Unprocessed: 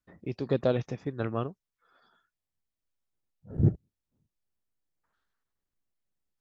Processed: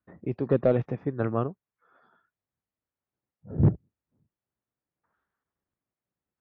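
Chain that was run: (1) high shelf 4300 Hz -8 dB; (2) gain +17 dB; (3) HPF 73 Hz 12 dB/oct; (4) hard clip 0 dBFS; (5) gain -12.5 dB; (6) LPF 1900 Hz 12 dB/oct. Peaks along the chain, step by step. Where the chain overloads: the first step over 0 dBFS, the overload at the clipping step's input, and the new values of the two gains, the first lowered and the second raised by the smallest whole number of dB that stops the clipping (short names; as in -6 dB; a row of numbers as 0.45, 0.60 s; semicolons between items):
-11.5, +5.5, +5.0, 0.0, -12.5, -12.0 dBFS; step 2, 5.0 dB; step 2 +12 dB, step 5 -7.5 dB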